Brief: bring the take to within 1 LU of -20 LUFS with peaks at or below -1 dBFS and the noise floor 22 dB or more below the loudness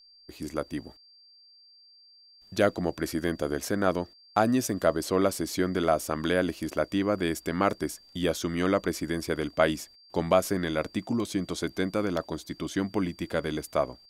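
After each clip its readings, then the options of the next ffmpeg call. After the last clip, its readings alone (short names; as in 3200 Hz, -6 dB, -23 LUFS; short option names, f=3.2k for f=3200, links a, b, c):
steady tone 4700 Hz; tone level -54 dBFS; loudness -28.5 LUFS; peak -7.5 dBFS; loudness target -20.0 LUFS
-> -af "bandreject=f=4.7k:w=30"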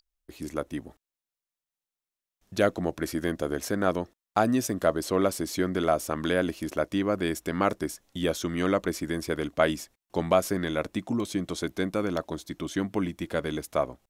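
steady tone none; loudness -28.5 LUFS; peak -7.5 dBFS; loudness target -20.0 LUFS
-> -af "volume=8.5dB,alimiter=limit=-1dB:level=0:latency=1"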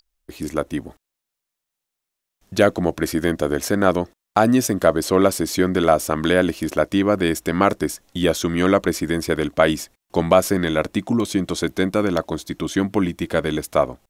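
loudness -20.5 LUFS; peak -1.0 dBFS; noise floor -83 dBFS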